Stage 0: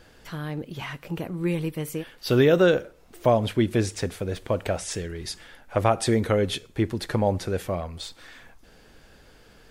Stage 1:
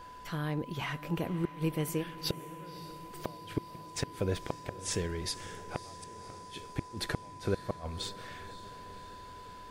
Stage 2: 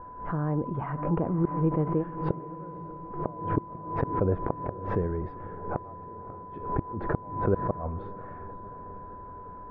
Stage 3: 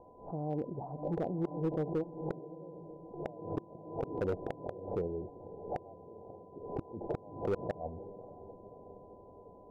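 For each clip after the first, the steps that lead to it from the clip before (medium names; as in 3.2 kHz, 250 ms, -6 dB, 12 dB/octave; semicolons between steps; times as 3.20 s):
inverted gate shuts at -17 dBFS, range -35 dB; echo that smears into a reverb 553 ms, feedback 68%, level -15 dB; whistle 1 kHz -45 dBFS; trim -2 dB
low-pass 1.2 kHz 24 dB/octave; swell ahead of each attack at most 86 dB/s; trim +6 dB
Chebyshev low-pass 780 Hz, order 5; tilt EQ +4 dB/octave; hard clipper -28 dBFS, distortion -13 dB; trim +1 dB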